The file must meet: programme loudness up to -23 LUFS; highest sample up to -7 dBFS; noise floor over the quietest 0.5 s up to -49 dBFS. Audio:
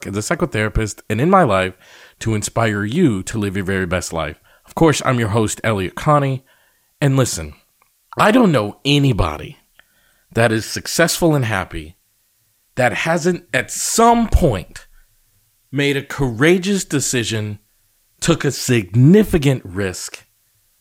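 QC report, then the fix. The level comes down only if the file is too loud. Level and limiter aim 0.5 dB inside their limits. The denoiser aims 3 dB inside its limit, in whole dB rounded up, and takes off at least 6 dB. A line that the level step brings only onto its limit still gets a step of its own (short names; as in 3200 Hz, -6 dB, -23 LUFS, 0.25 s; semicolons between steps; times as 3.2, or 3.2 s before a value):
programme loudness -17.0 LUFS: fail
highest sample -1.5 dBFS: fail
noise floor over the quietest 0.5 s -61 dBFS: OK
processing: gain -6.5 dB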